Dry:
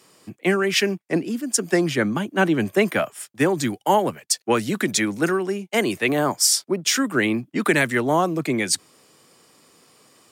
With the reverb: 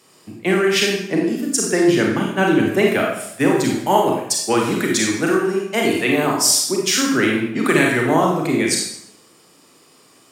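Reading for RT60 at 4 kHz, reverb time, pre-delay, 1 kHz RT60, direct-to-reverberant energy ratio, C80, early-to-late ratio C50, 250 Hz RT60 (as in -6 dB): 0.65 s, 0.75 s, 30 ms, 0.70 s, -1.0 dB, 5.5 dB, 2.0 dB, 0.80 s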